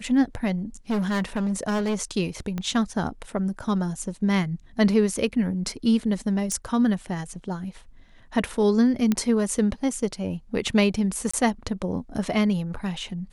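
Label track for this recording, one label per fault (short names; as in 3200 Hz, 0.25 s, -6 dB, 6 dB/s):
0.900000	1.950000	clipped -21.5 dBFS
2.580000	2.580000	pop -17 dBFS
6.520000	6.520000	pop -16 dBFS
9.120000	9.120000	pop -10 dBFS
11.310000	11.340000	gap 25 ms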